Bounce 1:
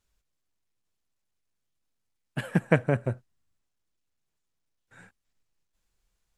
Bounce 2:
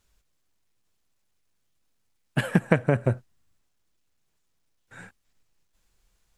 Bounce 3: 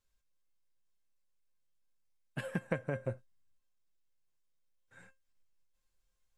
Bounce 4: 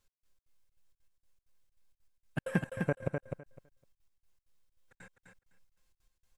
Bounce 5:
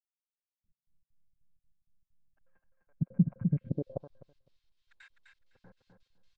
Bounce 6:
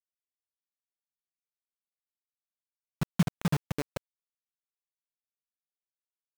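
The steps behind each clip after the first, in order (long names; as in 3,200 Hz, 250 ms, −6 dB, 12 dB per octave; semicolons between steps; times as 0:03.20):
downward compressor 6 to 1, threshold −23 dBFS, peak gain reduction 9 dB; level +7.5 dB
tuned comb filter 530 Hz, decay 0.19 s, harmonics all, mix 80%; level −2.5 dB
gate pattern "x..xx.xxx.xx." 195 BPM −60 dB; on a send: repeating echo 254 ms, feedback 16%, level −5 dB; on the sum: level +6 dB
low-pass filter sweep 180 Hz → 4,100 Hz, 0:03.00–0:03.72; multiband delay without the direct sound highs, lows 640 ms, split 1,100 Hz
spectral magnitudes quantised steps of 15 dB; bit reduction 5 bits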